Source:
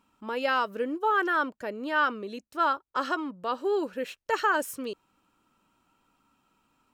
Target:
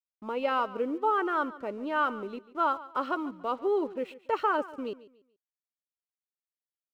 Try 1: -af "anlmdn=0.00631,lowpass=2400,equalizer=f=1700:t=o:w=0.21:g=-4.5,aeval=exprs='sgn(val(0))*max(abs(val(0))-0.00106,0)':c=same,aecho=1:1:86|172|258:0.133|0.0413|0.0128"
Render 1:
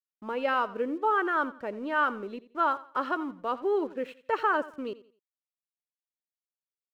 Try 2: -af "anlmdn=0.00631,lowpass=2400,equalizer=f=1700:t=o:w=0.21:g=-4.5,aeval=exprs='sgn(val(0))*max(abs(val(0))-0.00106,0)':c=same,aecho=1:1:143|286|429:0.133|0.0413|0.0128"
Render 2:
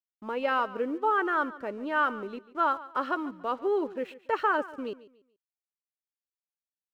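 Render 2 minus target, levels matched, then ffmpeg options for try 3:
2 kHz band +3.5 dB
-af "anlmdn=0.00631,lowpass=2400,equalizer=f=1700:t=o:w=0.21:g=-16,aeval=exprs='sgn(val(0))*max(abs(val(0))-0.00106,0)':c=same,aecho=1:1:143|286|429:0.133|0.0413|0.0128"

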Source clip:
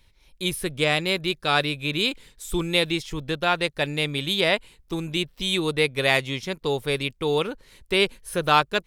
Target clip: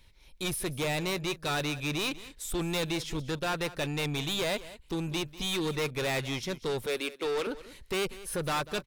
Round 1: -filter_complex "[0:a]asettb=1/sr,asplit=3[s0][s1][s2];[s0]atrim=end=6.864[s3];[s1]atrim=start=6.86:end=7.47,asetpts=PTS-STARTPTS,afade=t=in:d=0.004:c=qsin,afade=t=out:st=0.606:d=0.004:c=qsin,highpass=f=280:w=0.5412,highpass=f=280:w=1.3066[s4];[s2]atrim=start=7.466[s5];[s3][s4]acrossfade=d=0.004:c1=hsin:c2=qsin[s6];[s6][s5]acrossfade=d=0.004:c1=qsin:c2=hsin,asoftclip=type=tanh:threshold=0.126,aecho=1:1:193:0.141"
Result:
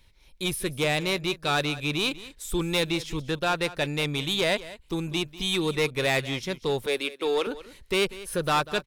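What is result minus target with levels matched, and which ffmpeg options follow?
saturation: distortion -6 dB
-filter_complex "[0:a]asettb=1/sr,asplit=3[s0][s1][s2];[s0]atrim=end=6.864[s3];[s1]atrim=start=6.86:end=7.47,asetpts=PTS-STARTPTS,afade=t=in:d=0.004:c=qsin,afade=t=out:st=0.606:d=0.004:c=qsin,highpass=f=280:w=0.5412,highpass=f=280:w=1.3066[s4];[s2]atrim=start=7.466[s5];[s3][s4]acrossfade=d=0.004:c1=hsin:c2=qsin[s6];[s6][s5]acrossfade=d=0.004:c1=qsin:c2=hsin,asoftclip=type=tanh:threshold=0.0422,aecho=1:1:193:0.141"

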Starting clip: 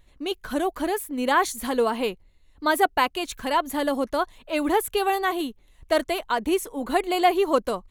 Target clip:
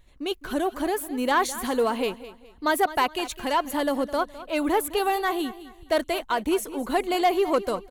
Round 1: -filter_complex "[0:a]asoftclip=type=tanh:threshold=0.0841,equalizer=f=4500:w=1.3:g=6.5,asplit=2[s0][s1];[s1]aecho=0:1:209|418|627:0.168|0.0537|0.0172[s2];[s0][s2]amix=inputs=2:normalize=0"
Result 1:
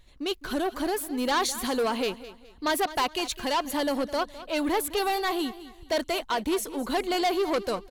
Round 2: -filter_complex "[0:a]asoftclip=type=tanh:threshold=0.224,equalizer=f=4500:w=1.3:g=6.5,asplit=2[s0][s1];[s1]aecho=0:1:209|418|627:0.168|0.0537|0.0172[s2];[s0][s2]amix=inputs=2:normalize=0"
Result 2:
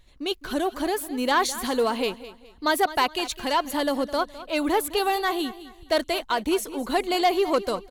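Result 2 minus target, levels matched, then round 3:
4 kHz band +3.5 dB
-filter_complex "[0:a]asoftclip=type=tanh:threshold=0.224,asplit=2[s0][s1];[s1]aecho=0:1:209|418|627:0.168|0.0537|0.0172[s2];[s0][s2]amix=inputs=2:normalize=0"

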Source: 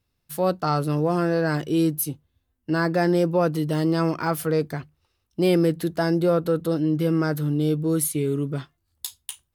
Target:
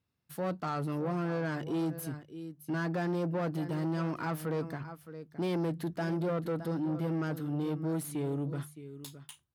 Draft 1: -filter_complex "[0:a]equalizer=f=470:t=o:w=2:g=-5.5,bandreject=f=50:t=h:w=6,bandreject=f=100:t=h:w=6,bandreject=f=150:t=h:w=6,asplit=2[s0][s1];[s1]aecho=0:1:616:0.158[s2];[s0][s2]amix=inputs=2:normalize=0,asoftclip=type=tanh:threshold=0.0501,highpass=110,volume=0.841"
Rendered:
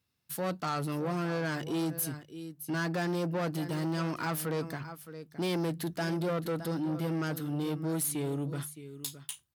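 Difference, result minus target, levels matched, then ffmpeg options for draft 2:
4 kHz band +7.0 dB
-filter_complex "[0:a]equalizer=f=470:t=o:w=2:g=-5.5,bandreject=f=50:t=h:w=6,bandreject=f=100:t=h:w=6,bandreject=f=150:t=h:w=6,asplit=2[s0][s1];[s1]aecho=0:1:616:0.158[s2];[s0][s2]amix=inputs=2:normalize=0,asoftclip=type=tanh:threshold=0.0501,highpass=110,highshelf=f=2500:g=-11.5,volume=0.841"

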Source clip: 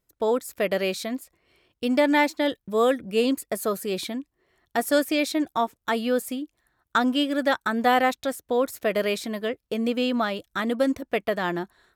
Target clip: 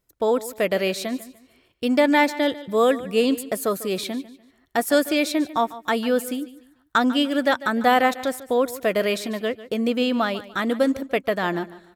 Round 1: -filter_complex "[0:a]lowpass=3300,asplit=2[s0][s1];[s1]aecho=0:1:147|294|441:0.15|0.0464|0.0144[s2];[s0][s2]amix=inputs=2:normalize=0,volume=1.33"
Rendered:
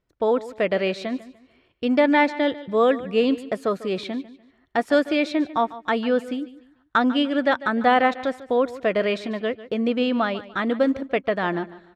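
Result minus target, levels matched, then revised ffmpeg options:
4 kHz band -3.0 dB
-filter_complex "[0:a]asplit=2[s0][s1];[s1]aecho=0:1:147|294|441:0.15|0.0464|0.0144[s2];[s0][s2]amix=inputs=2:normalize=0,volume=1.33"

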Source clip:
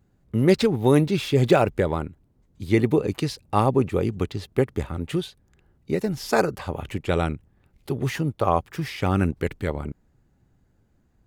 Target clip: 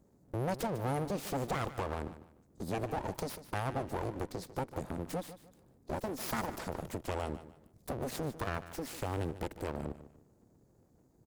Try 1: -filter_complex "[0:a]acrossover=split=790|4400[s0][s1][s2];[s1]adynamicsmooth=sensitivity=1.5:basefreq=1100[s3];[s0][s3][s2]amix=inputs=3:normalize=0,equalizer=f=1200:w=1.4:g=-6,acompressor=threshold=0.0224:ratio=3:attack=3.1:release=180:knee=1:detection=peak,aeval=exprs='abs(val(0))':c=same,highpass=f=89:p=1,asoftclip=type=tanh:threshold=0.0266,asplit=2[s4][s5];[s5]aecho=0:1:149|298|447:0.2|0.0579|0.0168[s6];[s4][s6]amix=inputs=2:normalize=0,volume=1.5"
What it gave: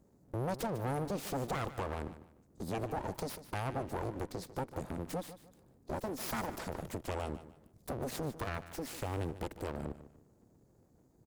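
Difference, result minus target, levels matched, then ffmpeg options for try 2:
saturation: distortion +14 dB
-filter_complex "[0:a]acrossover=split=790|4400[s0][s1][s2];[s1]adynamicsmooth=sensitivity=1.5:basefreq=1100[s3];[s0][s3][s2]amix=inputs=3:normalize=0,equalizer=f=1200:w=1.4:g=-6,acompressor=threshold=0.0224:ratio=3:attack=3.1:release=180:knee=1:detection=peak,aeval=exprs='abs(val(0))':c=same,highpass=f=89:p=1,asoftclip=type=tanh:threshold=0.0794,asplit=2[s4][s5];[s5]aecho=0:1:149|298|447:0.2|0.0579|0.0168[s6];[s4][s6]amix=inputs=2:normalize=0,volume=1.5"

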